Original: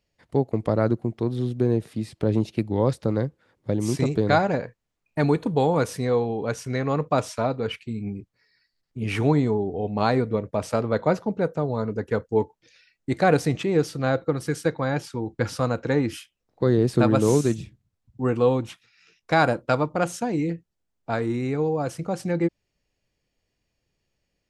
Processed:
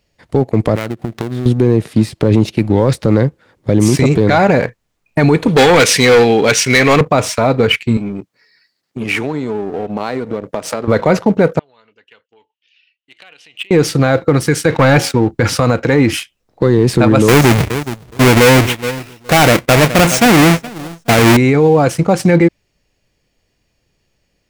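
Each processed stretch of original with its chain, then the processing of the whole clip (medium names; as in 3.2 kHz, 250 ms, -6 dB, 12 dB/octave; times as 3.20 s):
0.75–1.46 s: dead-time distortion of 0.2 ms + peaking EQ 1.7 kHz +3.5 dB 1.1 oct + compression 12:1, threshold -33 dBFS
5.48–7.01 s: frequency weighting D + overload inside the chain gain 23 dB
7.97–10.88 s: high-pass 200 Hz + compression, threshold -34 dBFS
11.59–13.71 s: compression 12:1, threshold -22 dBFS + band-pass filter 2.9 kHz, Q 8.9
14.70–15.13 s: feedback comb 92 Hz, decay 0.62 s, mix 30% + waveshaping leveller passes 2
17.28–21.37 s: square wave that keeps the level + feedback delay 419 ms, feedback 24%, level -21 dB
whole clip: dynamic bell 2.2 kHz, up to +6 dB, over -48 dBFS, Q 2.2; waveshaping leveller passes 1; loudness maximiser +15 dB; trim -1 dB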